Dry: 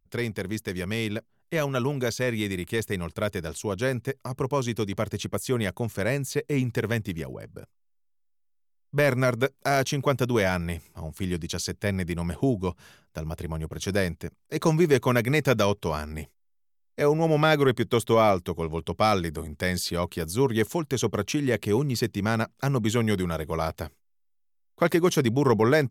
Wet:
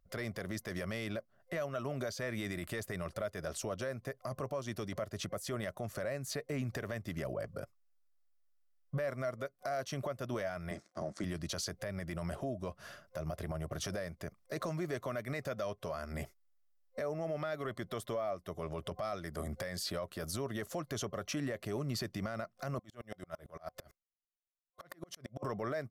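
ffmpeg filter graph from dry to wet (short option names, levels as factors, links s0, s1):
-filter_complex "[0:a]asettb=1/sr,asplit=3[s0][s1][s2];[s0]atrim=end=10.714[s3];[s1]atrim=start=10.71:end=11.24,asetpts=PTS-STARTPTS,afade=t=in:d=0.004:c=qsin,afade=t=out:st=0.526:d=0.004:c=qsin,aeval=exprs='sgn(val(0))*max(abs(val(0))-0.00224,0)':c=same,highpass=160,equalizer=f=200:t=q:w=4:g=6,equalizer=f=320:t=q:w=4:g=8,equalizer=f=2800:t=q:w=4:g=-9,equalizer=f=5800:t=q:w=4:g=3,lowpass=f=8100:w=0.5412,lowpass=f=8100:w=1.3066[s4];[s2]atrim=start=11.236[s5];[s3][s4]acrossfade=d=0.004:c1=hsin:c2=qsin[s6];[s6][s5]acrossfade=d=0.004:c1=qsin:c2=hsin,asettb=1/sr,asplit=3[s7][s8][s9];[s7]atrim=end=22.794[s10];[s8]atrim=start=22.79:end=25.43,asetpts=PTS-STARTPTS,afade=t=in:d=0.004:c=qsin,afade=t=out:st=2.636:d=0.004:c=qsin,agate=range=0.0224:threshold=0.002:ratio=3:release=100:detection=peak,acompressor=threshold=0.02:ratio=16:attack=3.2:release=140:knee=1:detection=peak,aeval=exprs='val(0)*pow(10,-39*if(lt(mod(-8.9*n/s,1),2*abs(-8.9)/1000),1-mod(-8.9*n/s,1)/(2*abs(-8.9)/1000),(mod(-8.9*n/s,1)-2*abs(-8.9)/1000)/(1-2*abs(-8.9)/1000))/20)':c=same[s11];[s9]atrim=start=25.426[s12];[s10][s11]acrossfade=d=0.004:c1=hsin:c2=qsin[s13];[s13][s12]acrossfade=d=0.004:c1=qsin:c2=hsin,superequalizer=8b=3.55:10b=2.24:11b=1.78:14b=1.41,acompressor=threshold=0.0316:ratio=10,alimiter=level_in=1.41:limit=0.0631:level=0:latency=1:release=15,volume=0.708,volume=0.841"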